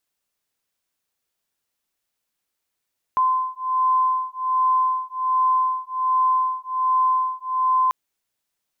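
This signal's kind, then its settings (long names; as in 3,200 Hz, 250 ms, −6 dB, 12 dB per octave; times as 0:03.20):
two tones that beat 1,030 Hz, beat 1.3 Hz, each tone −21 dBFS 4.74 s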